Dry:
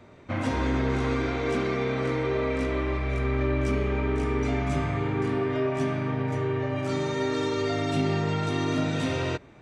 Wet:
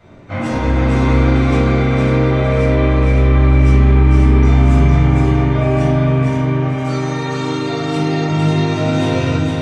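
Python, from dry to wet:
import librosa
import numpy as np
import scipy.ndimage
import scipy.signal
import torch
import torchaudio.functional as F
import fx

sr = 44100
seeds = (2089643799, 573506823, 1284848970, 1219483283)

y = fx.highpass(x, sr, hz=260.0, slope=6, at=(6.23, 8.29))
y = fx.echo_feedback(y, sr, ms=459, feedback_pct=37, wet_db=-3.0)
y = fx.room_shoebox(y, sr, seeds[0], volume_m3=670.0, walls='furnished', distance_m=7.3)
y = y * 10.0 ** (-1.5 / 20.0)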